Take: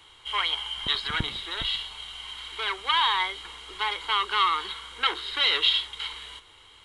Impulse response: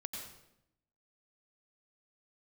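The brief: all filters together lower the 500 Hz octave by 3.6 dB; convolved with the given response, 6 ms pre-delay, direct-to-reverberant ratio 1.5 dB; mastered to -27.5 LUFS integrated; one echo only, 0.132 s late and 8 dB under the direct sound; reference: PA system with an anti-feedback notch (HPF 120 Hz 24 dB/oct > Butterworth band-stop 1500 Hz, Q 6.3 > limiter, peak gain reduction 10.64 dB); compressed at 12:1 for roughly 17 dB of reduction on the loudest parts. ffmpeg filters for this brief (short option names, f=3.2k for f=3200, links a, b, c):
-filter_complex "[0:a]equalizer=f=500:t=o:g=-4.5,acompressor=threshold=-36dB:ratio=12,aecho=1:1:132:0.398,asplit=2[a][b];[1:a]atrim=start_sample=2205,adelay=6[c];[b][c]afir=irnorm=-1:irlink=0,volume=-0.5dB[d];[a][d]amix=inputs=2:normalize=0,highpass=f=120:w=0.5412,highpass=f=120:w=1.3066,asuperstop=centerf=1500:order=8:qfactor=6.3,volume=12.5dB,alimiter=limit=-21dB:level=0:latency=1"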